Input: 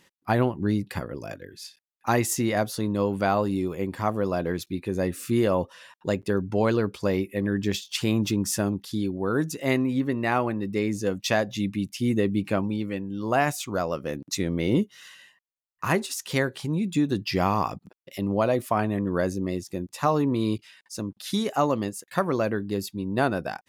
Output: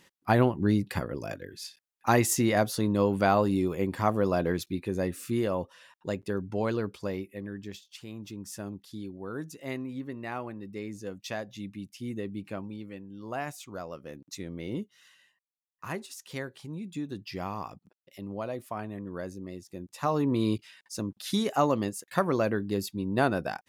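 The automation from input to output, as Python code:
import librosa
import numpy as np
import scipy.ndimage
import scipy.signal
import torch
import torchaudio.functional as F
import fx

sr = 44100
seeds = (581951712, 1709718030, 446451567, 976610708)

y = fx.gain(x, sr, db=fx.line((4.45, 0.0), (5.51, -6.5), (6.9, -6.5), (8.07, -19.0), (8.73, -12.0), (19.59, -12.0), (20.35, -1.5)))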